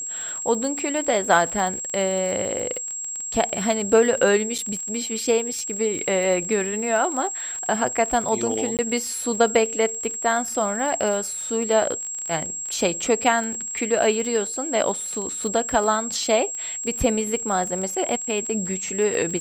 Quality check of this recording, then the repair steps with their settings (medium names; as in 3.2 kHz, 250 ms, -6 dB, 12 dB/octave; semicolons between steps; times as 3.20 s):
crackle 26 per s -27 dBFS
whine 7.6 kHz -28 dBFS
4.58–4.59 s: dropout 5.9 ms
8.77–8.79 s: dropout 18 ms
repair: de-click; band-stop 7.6 kHz, Q 30; interpolate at 4.58 s, 5.9 ms; interpolate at 8.77 s, 18 ms